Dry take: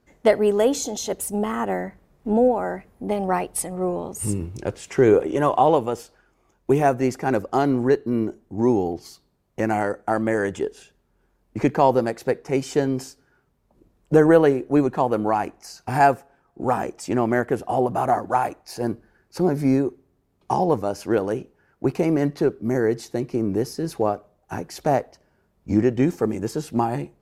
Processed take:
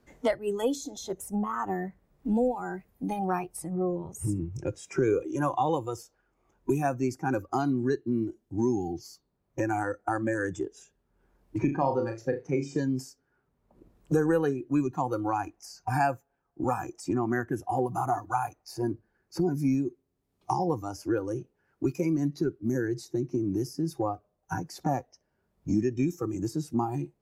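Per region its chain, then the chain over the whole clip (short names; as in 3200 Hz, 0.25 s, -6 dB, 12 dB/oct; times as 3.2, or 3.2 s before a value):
11.58–12.79 LPF 2200 Hz 6 dB/oct + flutter echo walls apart 6.1 m, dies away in 0.34 s
whole clip: spectral noise reduction 16 dB; dynamic EQ 790 Hz, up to -3 dB, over -30 dBFS, Q 0.73; three-band squash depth 70%; gain -4.5 dB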